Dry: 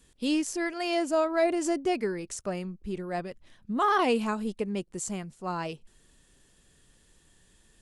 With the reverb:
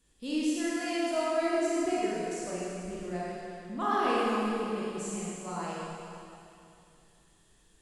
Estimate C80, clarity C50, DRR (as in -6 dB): -2.0 dB, -4.5 dB, -7.0 dB